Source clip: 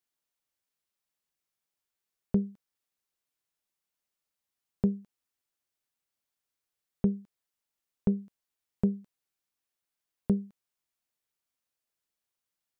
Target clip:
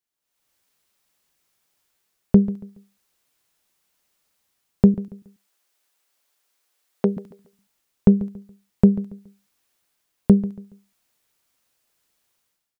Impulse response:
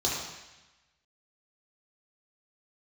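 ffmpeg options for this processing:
-filter_complex "[0:a]asettb=1/sr,asplit=3[link_01][link_02][link_03];[link_01]atrim=end=4.944[link_04];[link_02]atrim=start=4.94:end=7.17,asetpts=PTS-STARTPTS,afade=type=in:duration=0.004:curve=qsin,afade=type=out:start_time=2.226:duration=0.004:curve=qsin,highpass=380[link_05];[link_03]atrim=start=7.166[link_06];[link_04][link_05]acrossfade=duration=0.004:curve1=hsin:curve2=qsin[link_07];[link_07][link_06]acrossfade=duration=0.004:curve1=qsin:curve2=hsin,dynaudnorm=framelen=100:gausssize=7:maxgain=16dB,aecho=1:1:140|280|420:0.141|0.0424|0.0127"

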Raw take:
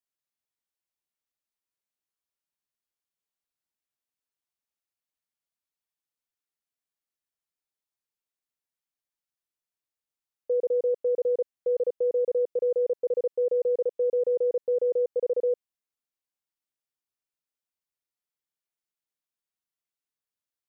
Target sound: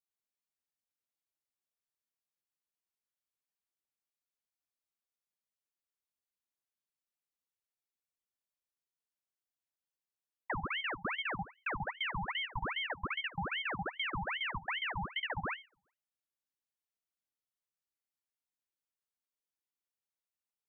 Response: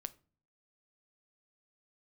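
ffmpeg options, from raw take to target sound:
-filter_complex "[0:a]acrossover=split=270|670[link_01][link_02][link_03];[link_01]acompressor=threshold=-54dB:ratio=4[link_04];[link_02]acompressor=threshold=-29dB:ratio=4[link_05];[link_03]acompressor=threshold=-46dB:ratio=4[link_06];[link_04][link_05][link_06]amix=inputs=3:normalize=0[link_07];[1:a]atrim=start_sample=2205[link_08];[link_07][link_08]afir=irnorm=-1:irlink=0,aeval=exprs='val(0)*sin(2*PI*1500*n/s+1500*0.8/2.5*sin(2*PI*2.5*n/s))':channel_layout=same"

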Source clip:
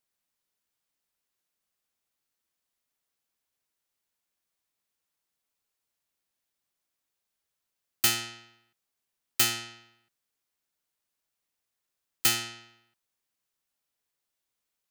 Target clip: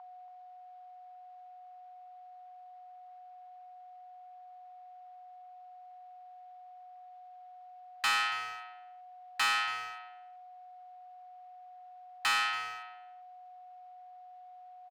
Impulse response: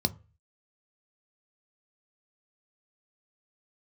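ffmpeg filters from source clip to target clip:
-filter_complex "[0:a]aeval=exprs='if(lt(val(0),0),0.251*val(0),val(0))':channel_layout=same,acrossover=split=460 4600:gain=0.0708 1 0.0794[link_01][link_02][link_03];[link_01][link_02][link_03]amix=inputs=3:normalize=0,aeval=exprs='val(0)+0.00112*sin(2*PI*730*n/s)':channel_layout=same,acontrast=88,asplit=2[link_04][link_05];[link_05]highpass=frequency=720:poles=1,volume=15dB,asoftclip=type=tanh:threshold=-13.5dB[link_06];[link_04][link_06]amix=inputs=2:normalize=0,lowpass=frequency=1700:poles=1,volume=-6dB,asoftclip=type=tanh:threshold=-29.5dB,lowshelf=frequency=740:width_type=q:width=3:gain=-9,asplit=2[link_07][link_08];[link_08]adelay=280,highpass=300,lowpass=3400,asoftclip=type=hard:threshold=-32dB,volume=-12dB[link_09];[link_07][link_09]amix=inputs=2:normalize=0,volume=2.5dB"

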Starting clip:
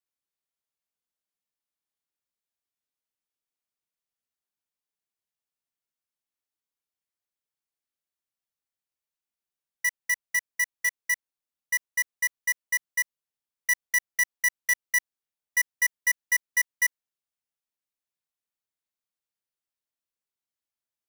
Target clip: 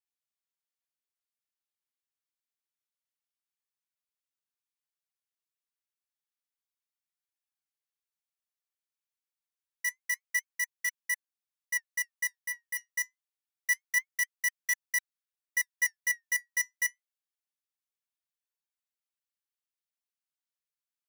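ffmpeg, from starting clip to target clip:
ffmpeg -i in.wav -filter_complex "[0:a]acrossover=split=820|4500[link_01][link_02][link_03];[link_01]acrusher=bits=3:dc=4:mix=0:aa=0.000001[link_04];[link_04][link_02][link_03]amix=inputs=3:normalize=0,flanger=delay=1.1:depth=6.9:regen=69:speed=0.27:shape=sinusoidal,asettb=1/sr,asplit=3[link_05][link_06][link_07];[link_05]atrim=end=12.374[link_08];[link_06]atrim=start=12.37:end=12.9,asetpts=PTS-STARTPTS,afade=type=in:duration=0.004:curve=qsin,afade=type=out:start_time=0.526:duration=0.004:curve=qsin,volume=30dB,asoftclip=hard,volume=-30dB[link_09];[link_07]atrim=start=12.896[link_10];[link_08][link_09]acrossfade=duration=0.004:curve1=hsin:curve2=qsin[link_11];[link_11][link_10]acrossfade=duration=0.004:curve1=qsin:curve2=hsin" out.wav

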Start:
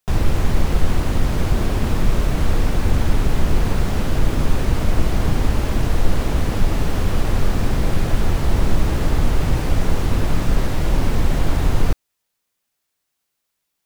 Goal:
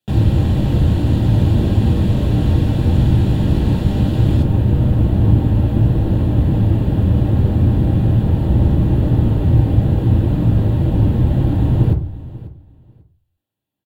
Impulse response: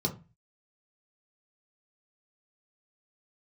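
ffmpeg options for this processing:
-filter_complex "[0:a]asetnsamples=nb_out_samples=441:pad=0,asendcmd='4.42 equalizer g -12.5',equalizer=frequency=5700:width_type=o:width=2.3:gain=-2,aecho=1:1:542|1084:0.126|0.0227[link_01];[1:a]atrim=start_sample=2205,asetrate=33075,aresample=44100[link_02];[link_01][link_02]afir=irnorm=-1:irlink=0,volume=-9dB"

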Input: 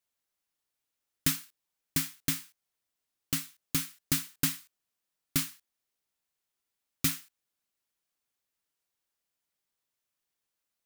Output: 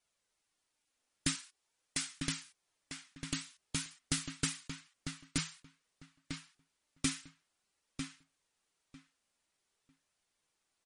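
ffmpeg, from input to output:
ffmpeg -i in.wav -filter_complex "[0:a]asettb=1/sr,asplit=3[link_01][link_02][link_03];[link_01]atrim=end=1.354[link_04];[link_02]atrim=start=1.35:end=2.17,asetpts=PTS-STARTPTS,afade=type=in:duration=0.004:curve=qsin,afade=type=out:start_time=0.816:duration=0.004:curve=qsin,bass=frequency=250:gain=-12,treble=frequency=4000:gain=1[link_05];[link_03]atrim=start=2.166[link_06];[link_04][link_05]acrossfade=duration=0.004:curve1=hsin:curve2=qsin[link_07];[link_07][link_06]acrossfade=duration=0.004:curve1=qsin:curve2=hsin,asplit=2[link_08][link_09];[link_09]acompressor=threshold=-40dB:ratio=16,volume=-1.5dB[link_10];[link_08][link_10]amix=inputs=2:normalize=0,alimiter=limit=-15.5dB:level=0:latency=1:release=264,flanger=delay=1.3:depth=2.7:regen=64:speed=0.49:shape=triangular,asplit=2[link_11][link_12];[link_12]adelay=949,lowpass=frequency=3300:poles=1,volume=-5.5dB,asplit=2[link_13][link_14];[link_14]adelay=949,lowpass=frequency=3300:poles=1,volume=0.18,asplit=2[link_15][link_16];[link_16]adelay=949,lowpass=frequency=3300:poles=1,volume=0.18[link_17];[link_13][link_15][link_17]amix=inputs=3:normalize=0[link_18];[link_11][link_18]amix=inputs=2:normalize=0,volume=4dB" -ar 44100 -c:a libmp3lame -b:a 40k out.mp3

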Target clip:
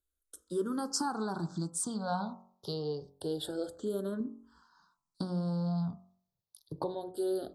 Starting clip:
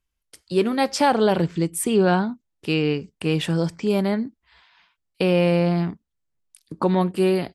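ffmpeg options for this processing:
ffmpeg -i in.wav -filter_complex "[0:a]asettb=1/sr,asplit=3[link_01][link_02][link_03];[link_01]atrim=end=4.204[link_04];[link_02]atrim=start=4.2:end=7.12,asetpts=PTS-STARTPTS,afade=type=in:duration=0.004:curve=qsin,afade=type=out:start_time=2.916:duration=0.004:curve=qsin,equalizer=frequency=130:width_type=o:width=2:gain=9[link_05];[link_03]atrim=start=7.116[link_06];[link_04][link_05]acrossfade=duration=0.004:curve1=hsin:curve2=qsin[link_07];[link_07][link_06]acrossfade=duration=0.004:curve1=qsin:curve2=hsin,acompressor=threshold=-23dB:ratio=6,asuperstop=centerf=2300:order=8:qfactor=1.1,lowshelf=frequency=440:gain=-7,bandreject=frequency=45.99:width_type=h:width=4,bandreject=frequency=91.98:width_type=h:width=4,bandreject=frequency=137.97:width_type=h:width=4,bandreject=frequency=183.96:width_type=h:width=4,bandreject=frequency=229.95:width_type=h:width=4,bandreject=frequency=275.94:width_type=h:width=4,bandreject=frequency=321.93:width_type=h:width=4,bandreject=frequency=367.92:width_type=h:width=4,bandreject=frequency=413.91:width_type=h:width=4,bandreject=frequency=459.9:width_type=h:width=4,bandreject=frequency=505.89:width_type=h:width=4,bandreject=frequency=551.88:width_type=h:width=4,bandreject=frequency=597.87:width_type=h:width=4,bandreject=frequency=643.86:width_type=h:width=4,bandreject=frequency=689.85:width_type=h:width=4,bandreject=frequency=735.84:width_type=h:width=4,bandreject=frequency=781.83:width_type=h:width=4,bandreject=frequency=827.82:width_type=h:width=4,bandreject=frequency=873.81:width_type=h:width=4,bandreject=frequency=919.8:width_type=h:width=4,bandreject=frequency=965.79:width_type=h:width=4,bandreject=frequency=1011.78:width_type=h:width=4,bandreject=frequency=1057.77:width_type=h:width=4,bandreject=frequency=1103.76:width_type=h:width=4,bandreject=frequency=1149.75:width_type=h:width=4,bandreject=frequency=1195.74:width_type=h:width=4,bandreject=frequency=1241.73:width_type=h:width=4,bandreject=frequency=1287.72:width_type=h:width=4,bandreject=frequency=1333.71:width_type=h:width=4,asplit=2[link_08][link_09];[link_09]afreqshift=-0.27[link_10];[link_08][link_10]amix=inputs=2:normalize=1" out.wav

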